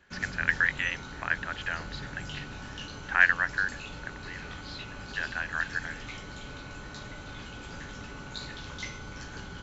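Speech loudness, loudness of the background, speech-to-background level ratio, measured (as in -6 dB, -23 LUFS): -29.0 LUFS, -41.0 LUFS, 12.0 dB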